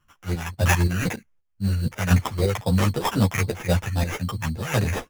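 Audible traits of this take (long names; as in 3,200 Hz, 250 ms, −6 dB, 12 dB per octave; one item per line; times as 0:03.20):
phaser sweep stages 2, 3.8 Hz, lowest notch 380–3,300 Hz
chopped level 1.9 Hz, depth 65%, duty 65%
aliases and images of a low sample rate 4,300 Hz, jitter 0%
a shimmering, thickened sound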